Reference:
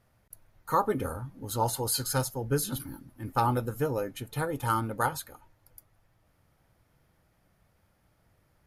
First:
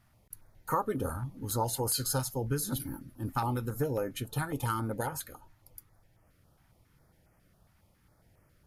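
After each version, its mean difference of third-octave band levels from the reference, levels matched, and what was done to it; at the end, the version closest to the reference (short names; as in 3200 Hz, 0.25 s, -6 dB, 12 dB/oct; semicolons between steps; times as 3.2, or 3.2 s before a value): 3.0 dB: compressor 3:1, threshold -30 dBFS, peak gain reduction 8 dB; stepped notch 7.3 Hz 480–3800 Hz; gain +2.5 dB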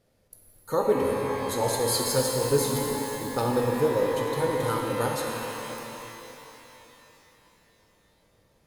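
10.5 dB: graphic EQ 250/500/1000/4000/8000 Hz +4/+11/-6/+6/+5 dB; shimmer reverb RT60 3.6 s, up +12 st, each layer -8 dB, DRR 0 dB; gain -4 dB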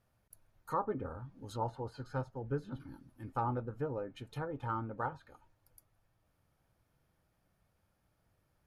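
6.0 dB: treble ducked by the level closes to 1500 Hz, closed at -27.5 dBFS; notch 2000 Hz, Q 13; gain -8 dB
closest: first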